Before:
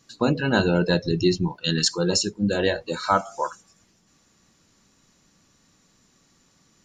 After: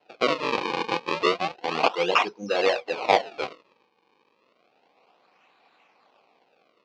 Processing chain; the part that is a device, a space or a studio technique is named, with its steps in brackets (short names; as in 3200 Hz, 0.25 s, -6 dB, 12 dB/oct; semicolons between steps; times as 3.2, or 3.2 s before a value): 0.52–1.08 HPF 350 Hz 6 dB/oct; circuit-bent sampling toy (decimation with a swept rate 37×, swing 160% 0.31 Hz; speaker cabinet 480–4900 Hz, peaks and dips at 480 Hz +4 dB, 760 Hz +8 dB, 1100 Hz +4 dB, 1700 Hz -5 dB, 2500 Hz +9 dB, 4300 Hz +4 dB)